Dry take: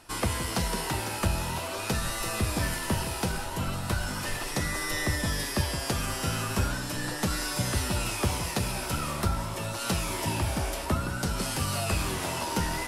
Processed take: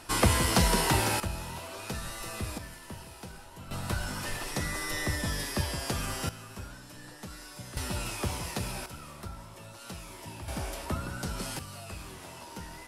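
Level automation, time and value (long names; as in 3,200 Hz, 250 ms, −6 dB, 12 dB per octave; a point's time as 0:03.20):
+5 dB
from 0:01.20 −7.5 dB
from 0:02.58 −15 dB
from 0:03.71 −3 dB
from 0:06.29 −15 dB
from 0:07.77 −5 dB
from 0:08.86 −14 dB
from 0:10.48 −5.5 dB
from 0:11.59 −14 dB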